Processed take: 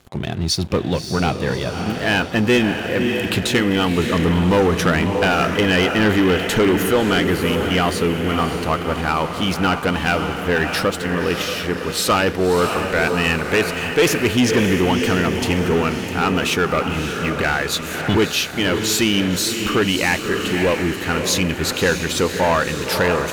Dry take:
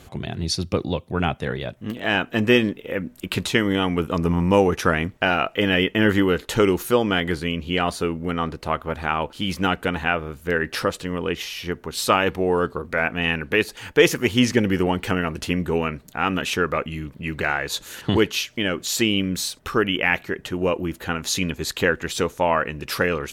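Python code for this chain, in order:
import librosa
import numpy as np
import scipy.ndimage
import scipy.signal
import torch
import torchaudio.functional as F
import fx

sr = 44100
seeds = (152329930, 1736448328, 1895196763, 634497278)

y = fx.echo_diffused(x, sr, ms=594, feedback_pct=54, wet_db=-8.0)
y = fx.leveller(y, sr, passes=3)
y = y * librosa.db_to_amplitude(-6.0)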